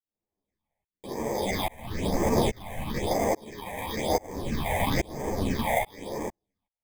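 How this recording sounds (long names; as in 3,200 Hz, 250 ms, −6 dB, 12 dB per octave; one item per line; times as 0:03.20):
aliases and images of a low sample rate 1,400 Hz, jitter 0%
phaser sweep stages 6, 1 Hz, lowest notch 330–3,900 Hz
tremolo saw up 1.2 Hz, depth 100%
a shimmering, thickened sound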